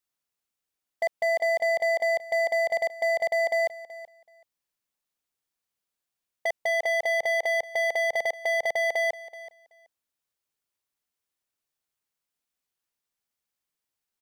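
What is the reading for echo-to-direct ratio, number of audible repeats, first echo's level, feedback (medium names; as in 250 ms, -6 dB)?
-17.0 dB, 2, -17.0 dB, 16%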